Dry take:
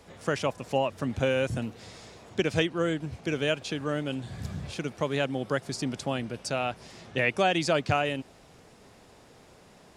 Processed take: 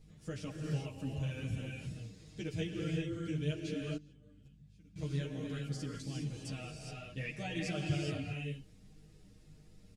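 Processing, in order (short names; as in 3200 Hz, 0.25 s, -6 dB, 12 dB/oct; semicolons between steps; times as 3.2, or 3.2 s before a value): passive tone stack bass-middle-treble 10-0-1; non-linear reverb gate 0.44 s rising, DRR 0 dB; 3.96–4.96 gate -38 dBFS, range -22 dB; hum 50 Hz, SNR 18 dB; comb 6.5 ms, depth 73%; ensemble effect; gain +9 dB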